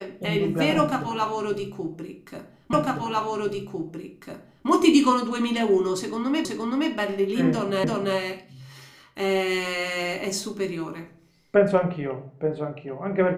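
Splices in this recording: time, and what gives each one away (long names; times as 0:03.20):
0:02.73: the same again, the last 1.95 s
0:06.45: the same again, the last 0.47 s
0:07.84: the same again, the last 0.34 s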